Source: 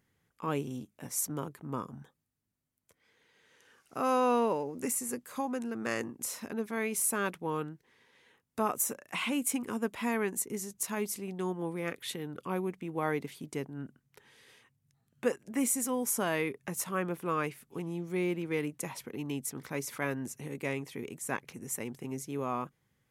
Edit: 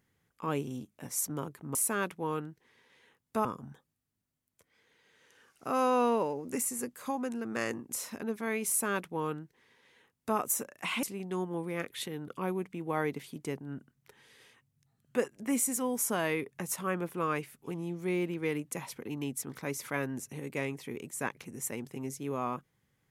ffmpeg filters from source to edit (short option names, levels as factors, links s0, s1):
-filter_complex "[0:a]asplit=4[s0][s1][s2][s3];[s0]atrim=end=1.752[s4];[s1]atrim=start=6.978:end=8.682[s5];[s2]atrim=start=1.748:end=9.332[s6];[s3]atrim=start=11.108[s7];[s4][s5]acrossfade=d=0.004:c1=hsin:c2=hsin[s8];[s8][s6]acrossfade=d=0.004:c1=hsin:c2=hsin[s9];[s9][s7]acrossfade=d=0.004:c1=hsin:c2=hsin"